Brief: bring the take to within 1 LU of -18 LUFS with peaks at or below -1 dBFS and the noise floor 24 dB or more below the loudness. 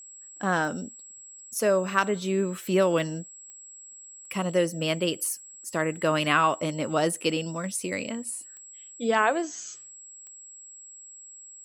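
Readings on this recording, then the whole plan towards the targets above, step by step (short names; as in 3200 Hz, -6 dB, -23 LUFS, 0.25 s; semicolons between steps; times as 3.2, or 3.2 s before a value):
clicks 5; steady tone 7700 Hz; tone level -44 dBFS; loudness -27.0 LUFS; peak -8.0 dBFS; loudness target -18.0 LUFS
-> de-click; notch 7700 Hz, Q 30; gain +9 dB; limiter -1 dBFS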